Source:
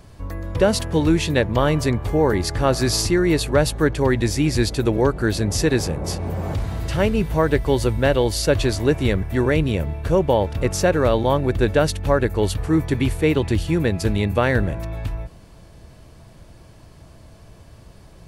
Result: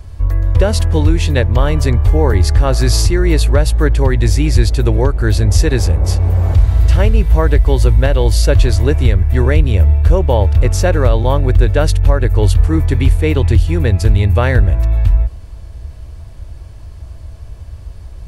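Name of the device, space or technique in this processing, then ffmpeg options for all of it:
car stereo with a boomy subwoofer: -af "lowshelf=f=110:t=q:w=1.5:g=13,alimiter=limit=0.631:level=0:latency=1:release=207,volume=1.41"

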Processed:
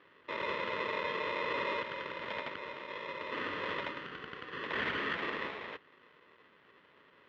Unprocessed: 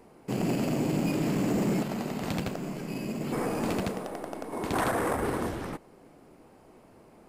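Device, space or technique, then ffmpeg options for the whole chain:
ring modulator pedal into a guitar cabinet: -af "aeval=exprs='val(0)*sgn(sin(2*PI*760*n/s))':c=same,highpass=110,equalizer=f=120:t=q:w=4:g=-4,equalizer=f=420:t=q:w=4:g=3,equalizer=f=750:t=q:w=4:g=-5,equalizer=f=1900:t=q:w=4:g=9,equalizer=f=3200:t=q:w=4:g=6,lowpass=f=3500:w=0.5412,lowpass=f=3500:w=1.3066,volume=0.355"

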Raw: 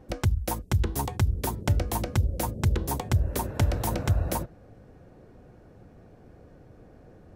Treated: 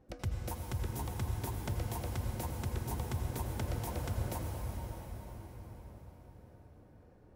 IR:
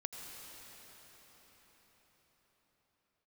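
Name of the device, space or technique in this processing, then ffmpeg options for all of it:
cathedral: -filter_complex "[1:a]atrim=start_sample=2205[s0];[0:a][s0]afir=irnorm=-1:irlink=0,volume=0.355"

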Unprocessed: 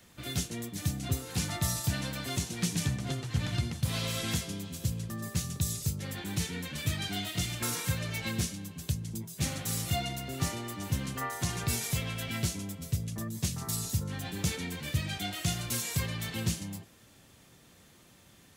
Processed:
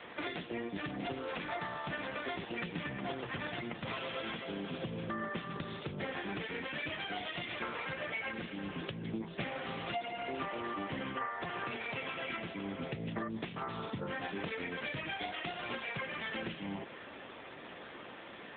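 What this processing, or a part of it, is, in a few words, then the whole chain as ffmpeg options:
voicemail: -af "highpass=380,lowpass=2600,acompressor=threshold=0.00251:ratio=12,volume=7.94" -ar 8000 -c:a libopencore_amrnb -b:a 7950

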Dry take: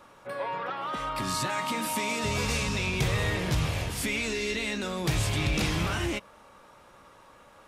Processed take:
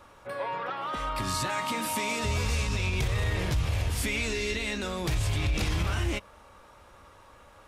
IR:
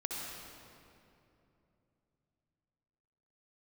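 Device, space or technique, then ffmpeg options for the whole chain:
car stereo with a boomy subwoofer: -af "lowshelf=f=110:t=q:w=1.5:g=7.5,alimiter=limit=0.106:level=0:latency=1:release=60"

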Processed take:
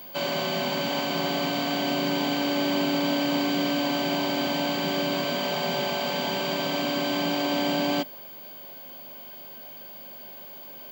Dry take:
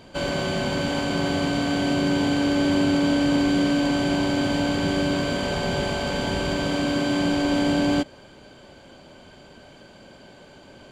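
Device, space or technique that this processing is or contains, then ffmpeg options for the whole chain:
old television with a line whistle: -af "highpass=f=190:w=0.5412,highpass=f=190:w=1.3066,equalizer=f=210:t=q:w=4:g=-5,equalizer=f=310:t=q:w=4:g=-9,equalizer=f=470:t=q:w=4:g=-8,equalizer=f=1500:t=q:w=4:g=-6,lowpass=f=6600:w=0.5412,lowpass=f=6600:w=1.3066,aeval=exprs='val(0)+0.00794*sin(2*PI*15625*n/s)':c=same,volume=1.19"

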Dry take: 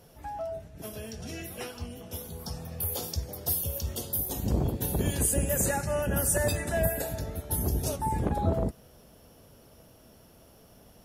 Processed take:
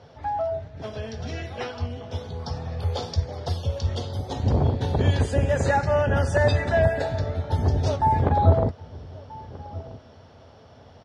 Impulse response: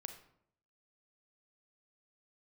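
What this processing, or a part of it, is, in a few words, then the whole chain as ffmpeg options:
guitar cabinet: -filter_complex "[0:a]highpass=87,equalizer=f=89:t=q:w=4:g=9,equalizer=f=190:t=q:w=4:g=-9,equalizer=f=330:t=q:w=4:g=-7,equalizer=f=840:t=q:w=4:g=3,equalizer=f=2700:t=q:w=4:g=-6,lowpass=f=4500:w=0.5412,lowpass=f=4500:w=1.3066,asplit=2[s0][s1];[s1]adelay=1283,volume=0.126,highshelf=f=4000:g=-28.9[s2];[s0][s2]amix=inputs=2:normalize=0,volume=2.51"

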